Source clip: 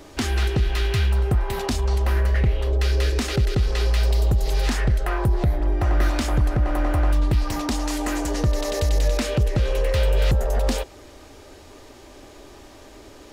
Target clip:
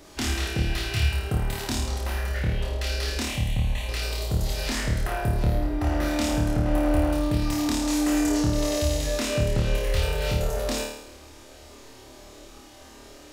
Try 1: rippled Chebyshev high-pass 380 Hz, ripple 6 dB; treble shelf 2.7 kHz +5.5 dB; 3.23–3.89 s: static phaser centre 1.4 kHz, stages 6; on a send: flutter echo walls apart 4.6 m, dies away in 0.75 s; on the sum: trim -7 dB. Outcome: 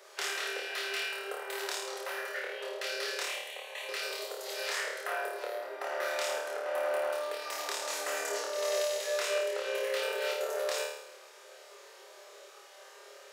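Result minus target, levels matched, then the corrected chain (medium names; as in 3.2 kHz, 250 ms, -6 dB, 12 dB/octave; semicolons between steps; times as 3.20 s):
500 Hz band +5.5 dB
treble shelf 2.7 kHz +5.5 dB; 3.23–3.89 s: static phaser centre 1.4 kHz, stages 6; on a send: flutter echo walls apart 4.6 m, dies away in 0.75 s; on the sum: trim -7 dB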